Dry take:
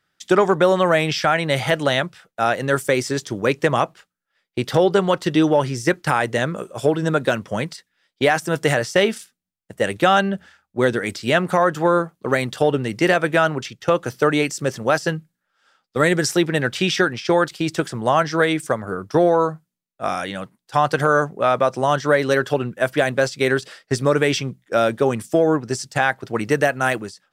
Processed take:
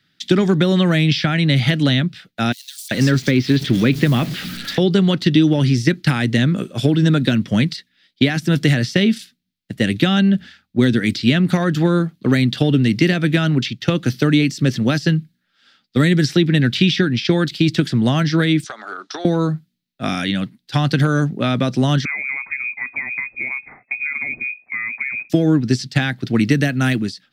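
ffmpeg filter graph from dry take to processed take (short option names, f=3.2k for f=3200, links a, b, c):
-filter_complex "[0:a]asettb=1/sr,asplit=3[a][b][c];[a]atrim=end=2.524[d];[b]atrim=start=2.52:end=4.78,asetpts=PTS-STARTPTS,afade=t=in:d=0.004:c=qsin,afade=t=out:st=2.256:d=0.004:c=qsin,aeval=exprs='val(0)+0.5*0.0335*sgn(val(0))':c=same,acrossover=split=4400[e][f];[e]adelay=390[g];[g][f]amix=inputs=2:normalize=0,atrim=end_sample=99666[h];[c]atrim=start=4.776[i];[d][h]acrossfade=d=0.004:c1=hsin:c2=qsin[j];[j][i]acrossfade=d=0.004:c1=qsin:c2=hsin,asettb=1/sr,asplit=3[k][l][m];[k]atrim=end=18.644[n];[l]atrim=start=18.64:end=19.25,asetpts=PTS-STARTPTS,afade=t=in:d=0.004:c=qsin,afade=t=out:st=0.606:d=0.004:c=qsin,highpass=f=460:w=0.5412,highpass=f=460:w=1.3066,equalizer=f=490:t=q:w=4:g=-10,equalizer=f=800:t=q:w=4:g=6,equalizer=f=1.3k:t=q:w=4:g=6,equalizer=f=2.2k:t=q:w=4:g=-4,equalizer=f=3.8k:t=q:w=4:g=5,equalizer=f=5.9k:t=q:w=4:g=5,lowpass=f=8.1k:w=0.5412,lowpass=f=8.1k:w=1.3066,acompressor=threshold=-25dB:ratio=10:attack=3.2:release=140:knee=1:detection=peak[o];[m]atrim=start=19.246[p];[n][o]acrossfade=d=0.004:c1=hsin:c2=qsin[q];[q][p]acrossfade=d=0.004:c1=qsin:c2=hsin,asettb=1/sr,asplit=3[r][s][t];[r]atrim=end=22.054[u];[s]atrim=start=22.05:end=25.3,asetpts=PTS-STARTPTS,afade=t=in:d=0.004:c=qsin,afade=t=out:st=3.246:d=0.004:c=qsin,acompressor=threshold=-35dB:ratio=2.5:attack=3.2:release=140:knee=1:detection=peak,lowshelf=f=92:g=10.5,lowpass=f=2.2k:t=q:w=0.5098,lowpass=f=2.2k:t=q:w=0.6013,lowpass=f=2.2k:t=q:w=0.9,lowpass=f=2.2k:t=q:w=2.563,afreqshift=-2600[v];[t]atrim=start=25.296[w];[u][v]acrossfade=d=0.004:c1=hsin:c2=qsin[x];[x][w]acrossfade=d=0.004:c1=qsin:c2=hsin,equalizer=f=125:t=o:w=1:g=7,equalizer=f=250:t=o:w=1:g=11,equalizer=f=500:t=o:w=1:g=-6,equalizer=f=1k:t=o:w=1:g=-9,equalizer=f=2k:t=o:w=1:g=4,equalizer=f=4k:t=o:w=1:g=11,equalizer=f=8k:t=o:w=1:g=-6,acrossover=split=320|4400[y][z][aa];[y]acompressor=threshold=-16dB:ratio=4[ab];[z]acompressor=threshold=-24dB:ratio=4[ac];[aa]acompressor=threshold=-37dB:ratio=4[ad];[ab][ac][ad]amix=inputs=3:normalize=0,volume=3.5dB"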